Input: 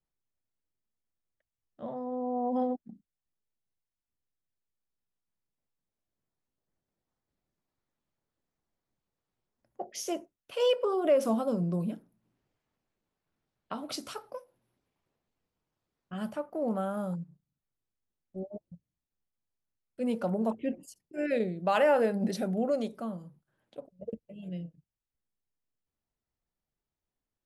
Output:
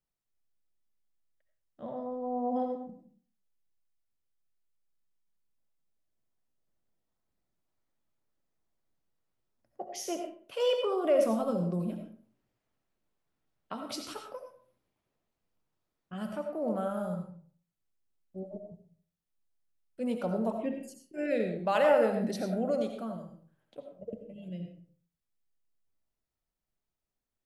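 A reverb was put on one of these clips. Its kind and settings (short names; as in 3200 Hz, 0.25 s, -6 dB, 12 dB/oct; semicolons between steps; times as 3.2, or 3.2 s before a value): digital reverb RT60 0.48 s, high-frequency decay 0.65×, pre-delay 45 ms, DRR 4.5 dB; gain -2 dB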